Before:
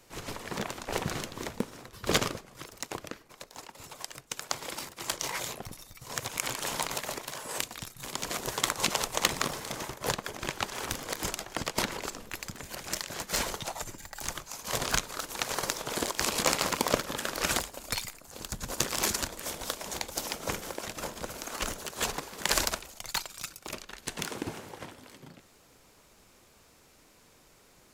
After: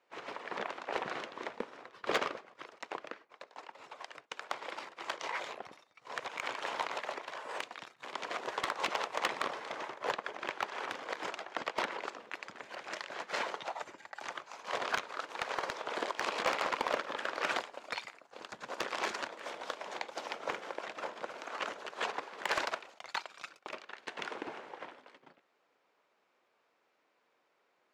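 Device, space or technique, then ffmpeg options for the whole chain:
walkie-talkie: -af "highpass=470,lowpass=2500,asoftclip=type=hard:threshold=-22dB,agate=range=-10dB:threshold=-55dB:ratio=16:detection=peak"

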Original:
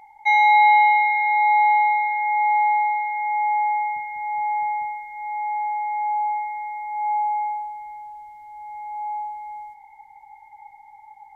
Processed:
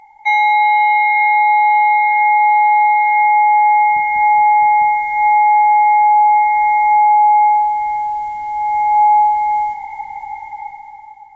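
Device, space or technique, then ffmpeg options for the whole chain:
low-bitrate web radio: -af "dynaudnorm=framelen=310:gausssize=7:maxgain=16dB,alimiter=limit=-10dB:level=0:latency=1:release=447,volume=4dB" -ar 22050 -c:a aac -b:a 24k

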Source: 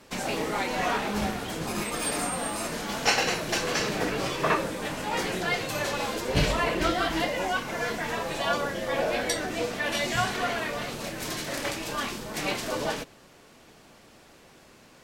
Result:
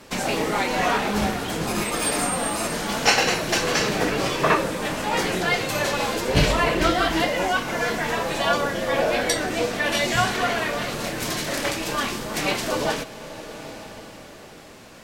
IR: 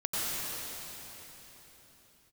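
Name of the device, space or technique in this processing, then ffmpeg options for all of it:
ducked reverb: -filter_complex "[0:a]asplit=3[link_01][link_02][link_03];[1:a]atrim=start_sample=2205[link_04];[link_02][link_04]afir=irnorm=-1:irlink=0[link_05];[link_03]apad=whole_len=663234[link_06];[link_05][link_06]sidechaincompress=threshold=-38dB:ratio=6:attack=22:release=834,volume=-11.5dB[link_07];[link_01][link_07]amix=inputs=2:normalize=0,volume=5dB"

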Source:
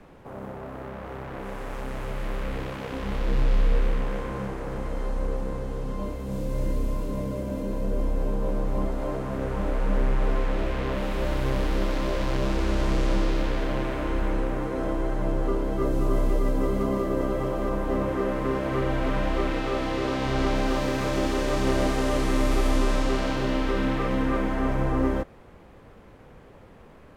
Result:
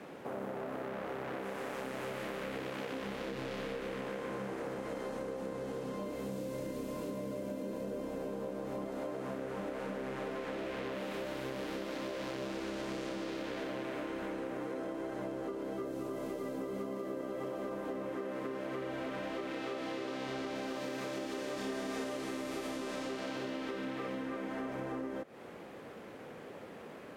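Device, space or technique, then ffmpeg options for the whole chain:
serial compression, peaks first: -filter_complex "[0:a]highpass=230,equalizer=frequency=1000:width_type=o:width=0.72:gain=-4,acompressor=threshold=-37dB:ratio=6,acompressor=threshold=-42dB:ratio=2.5,asettb=1/sr,asplit=3[link_01][link_02][link_03];[link_01]atrim=end=21.554[link_04];[link_02]atrim=start=21.55:end=22.04,asetpts=PTS-STARTPTS,afade=type=in:duration=0.004:curve=qsin,afade=type=out:start_time=0.486:duration=0.004:curve=qsin,asplit=2[link_05][link_06];[link_06]adelay=26,volume=-3dB[link_07];[link_05][link_07]amix=inputs=2:normalize=0,atrim=end_sample=21609[link_08];[link_03]atrim=start=22.036[link_09];[link_04][link_08]acrossfade=duration=0.004:curve1=hsin:curve2=qsin[link_10];[link_10][link_09]acrossfade=duration=0.004:curve1=qsin:curve2=hsin,volume=4.5dB"

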